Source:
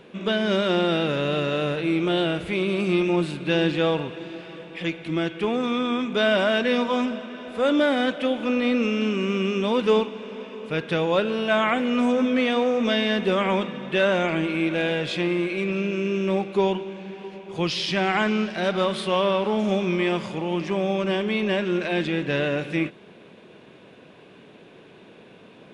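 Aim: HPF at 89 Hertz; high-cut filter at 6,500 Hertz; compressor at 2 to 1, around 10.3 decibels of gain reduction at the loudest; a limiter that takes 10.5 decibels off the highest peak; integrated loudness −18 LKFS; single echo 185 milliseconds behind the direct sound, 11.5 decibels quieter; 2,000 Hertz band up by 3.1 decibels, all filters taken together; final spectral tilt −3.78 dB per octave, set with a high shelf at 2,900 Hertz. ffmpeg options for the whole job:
ffmpeg -i in.wav -af "highpass=89,lowpass=6500,equalizer=frequency=2000:width_type=o:gain=6,highshelf=frequency=2900:gain=-4,acompressor=threshold=-35dB:ratio=2,alimiter=level_in=3.5dB:limit=-24dB:level=0:latency=1,volume=-3.5dB,aecho=1:1:185:0.266,volume=18dB" out.wav

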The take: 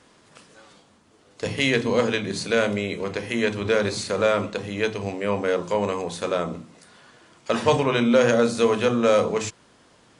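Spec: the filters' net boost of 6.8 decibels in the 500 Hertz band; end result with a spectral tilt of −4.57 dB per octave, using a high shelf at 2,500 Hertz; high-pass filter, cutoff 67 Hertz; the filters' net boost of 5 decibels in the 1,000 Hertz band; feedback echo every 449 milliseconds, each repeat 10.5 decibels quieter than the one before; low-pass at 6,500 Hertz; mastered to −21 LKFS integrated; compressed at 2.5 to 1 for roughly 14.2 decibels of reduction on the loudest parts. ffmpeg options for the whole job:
ffmpeg -i in.wav -af "highpass=67,lowpass=6500,equalizer=frequency=500:width_type=o:gain=6.5,equalizer=frequency=1000:width_type=o:gain=5.5,highshelf=frequency=2500:gain=-5.5,acompressor=threshold=-30dB:ratio=2.5,aecho=1:1:449|898|1347:0.299|0.0896|0.0269,volume=8dB" out.wav

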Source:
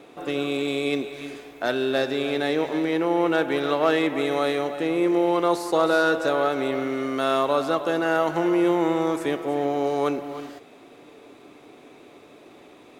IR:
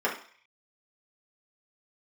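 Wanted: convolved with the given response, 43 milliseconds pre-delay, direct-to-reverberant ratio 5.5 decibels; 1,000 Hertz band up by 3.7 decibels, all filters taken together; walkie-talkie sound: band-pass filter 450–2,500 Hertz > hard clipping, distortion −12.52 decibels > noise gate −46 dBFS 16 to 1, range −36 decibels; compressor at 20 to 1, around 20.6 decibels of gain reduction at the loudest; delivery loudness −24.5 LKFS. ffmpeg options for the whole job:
-filter_complex "[0:a]equalizer=frequency=1000:width_type=o:gain=5.5,acompressor=threshold=-34dB:ratio=20,asplit=2[link_01][link_02];[1:a]atrim=start_sample=2205,adelay=43[link_03];[link_02][link_03]afir=irnorm=-1:irlink=0,volume=-17.5dB[link_04];[link_01][link_04]amix=inputs=2:normalize=0,highpass=450,lowpass=2500,asoftclip=type=hard:threshold=-36dB,agate=range=-36dB:threshold=-46dB:ratio=16,volume=17.5dB"

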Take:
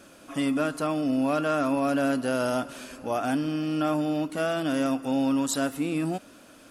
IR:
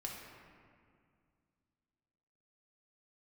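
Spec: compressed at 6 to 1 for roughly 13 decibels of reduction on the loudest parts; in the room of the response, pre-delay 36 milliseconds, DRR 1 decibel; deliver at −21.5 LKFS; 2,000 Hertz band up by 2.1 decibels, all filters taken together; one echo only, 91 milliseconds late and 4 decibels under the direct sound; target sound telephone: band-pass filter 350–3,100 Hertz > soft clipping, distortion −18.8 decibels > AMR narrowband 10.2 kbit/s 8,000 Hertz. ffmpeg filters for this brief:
-filter_complex "[0:a]equalizer=frequency=2000:width_type=o:gain=4,acompressor=threshold=-36dB:ratio=6,aecho=1:1:91:0.631,asplit=2[link_01][link_02];[1:a]atrim=start_sample=2205,adelay=36[link_03];[link_02][link_03]afir=irnorm=-1:irlink=0,volume=0dB[link_04];[link_01][link_04]amix=inputs=2:normalize=0,highpass=350,lowpass=3100,asoftclip=threshold=-29dB,volume=17.5dB" -ar 8000 -c:a libopencore_amrnb -b:a 10200

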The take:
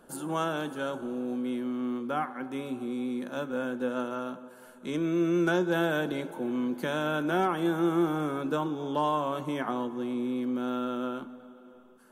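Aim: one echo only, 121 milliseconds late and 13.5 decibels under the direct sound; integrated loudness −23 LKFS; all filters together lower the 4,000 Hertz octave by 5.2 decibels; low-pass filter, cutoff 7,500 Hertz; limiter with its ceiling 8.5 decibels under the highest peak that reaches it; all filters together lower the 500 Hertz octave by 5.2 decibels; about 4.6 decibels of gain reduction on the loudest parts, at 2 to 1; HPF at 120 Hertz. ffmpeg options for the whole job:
ffmpeg -i in.wav -af "highpass=120,lowpass=7500,equalizer=frequency=500:width_type=o:gain=-7.5,equalizer=frequency=4000:width_type=o:gain=-6.5,acompressor=threshold=-34dB:ratio=2,alimiter=level_in=7dB:limit=-24dB:level=0:latency=1,volume=-7dB,aecho=1:1:121:0.211,volume=15.5dB" out.wav

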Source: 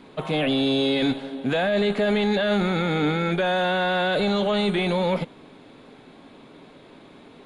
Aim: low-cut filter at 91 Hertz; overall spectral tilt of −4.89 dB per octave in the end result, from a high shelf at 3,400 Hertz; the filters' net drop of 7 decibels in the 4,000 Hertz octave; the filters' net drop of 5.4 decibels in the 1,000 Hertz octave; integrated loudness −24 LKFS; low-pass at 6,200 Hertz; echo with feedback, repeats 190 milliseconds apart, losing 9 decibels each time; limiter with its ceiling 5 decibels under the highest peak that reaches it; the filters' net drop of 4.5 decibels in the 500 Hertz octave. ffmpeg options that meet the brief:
ffmpeg -i in.wav -af "highpass=91,lowpass=6200,equalizer=frequency=500:width_type=o:gain=-4,equalizer=frequency=1000:width_type=o:gain=-5.5,highshelf=frequency=3400:gain=-5,equalizer=frequency=4000:width_type=o:gain=-4.5,alimiter=limit=-20dB:level=0:latency=1,aecho=1:1:190|380|570|760:0.355|0.124|0.0435|0.0152,volume=4dB" out.wav

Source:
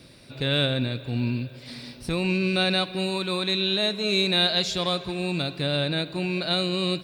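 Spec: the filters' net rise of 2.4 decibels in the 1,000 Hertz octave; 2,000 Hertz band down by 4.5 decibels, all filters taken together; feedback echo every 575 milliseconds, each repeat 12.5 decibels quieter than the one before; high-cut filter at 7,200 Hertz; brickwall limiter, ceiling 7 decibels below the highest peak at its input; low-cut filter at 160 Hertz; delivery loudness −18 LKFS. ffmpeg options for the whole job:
ffmpeg -i in.wav -af "highpass=160,lowpass=7200,equalizer=frequency=1000:width_type=o:gain=5.5,equalizer=frequency=2000:width_type=o:gain=-8.5,alimiter=limit=-18.5dB:level=0:latency=1,aecho=1:1:575|1150|1725:0.237|0.0569|0.0137,volume=10.5dB" out.wav

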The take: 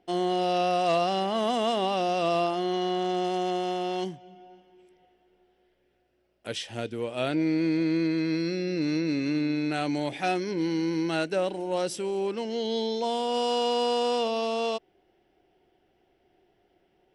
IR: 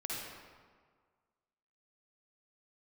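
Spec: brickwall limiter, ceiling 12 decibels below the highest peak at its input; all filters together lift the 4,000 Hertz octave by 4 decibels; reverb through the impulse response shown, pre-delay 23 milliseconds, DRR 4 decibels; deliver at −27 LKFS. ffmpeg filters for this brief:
-filter_complex "[0:a]equalizer=frequency=4000:width_type=o:gain=5.5,alimiter=level_in=1dB:limit=-24dB:level=0:latency=1,volume=-1dB,asplit=2[link_01][link_02];[1:a]atrim=start_sample=2205,adelay=23[link_03];[link_02][link_03]afir=irnorm=-1:irlink=0,volume=-6.5dB[link_04];[link_01][link_04]amix=inputs=2:normalize=0,volume=5.5dB"

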